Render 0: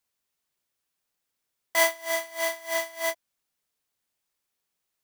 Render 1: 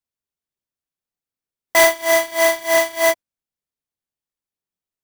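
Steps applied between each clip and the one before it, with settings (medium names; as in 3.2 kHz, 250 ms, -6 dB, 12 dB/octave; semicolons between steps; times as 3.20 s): bass shelf 480 Hz +9.5 dB; waveshaping leveller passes 3; spectral noise reduction 7 dB; trim +1 dB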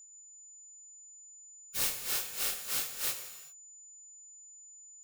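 spectral gate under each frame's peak -30 dB weak; whistle 7 kHz -44 dBFS; gated-style reverb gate 420 ms falling, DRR 6 dB; trim -7 dB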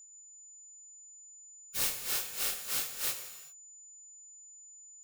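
no audible change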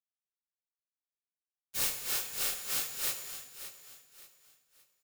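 small samples zeroed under -46.5 dBFS; feedback delay 574 ms, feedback 33%, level -12 dB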